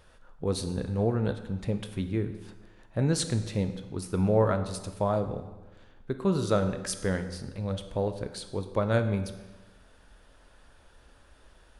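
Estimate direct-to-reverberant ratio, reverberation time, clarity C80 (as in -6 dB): 7.5 dB, 1.2 s, 12.0 dB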